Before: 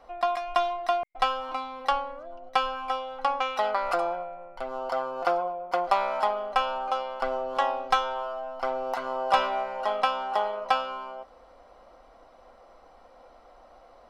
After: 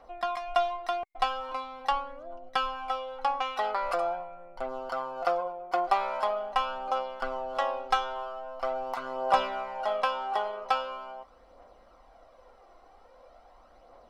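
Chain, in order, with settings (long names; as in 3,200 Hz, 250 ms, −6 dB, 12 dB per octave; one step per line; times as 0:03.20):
phase shifter 0.43 Hz, delay 2.9 ms, feedback 37%
level −3.5 dB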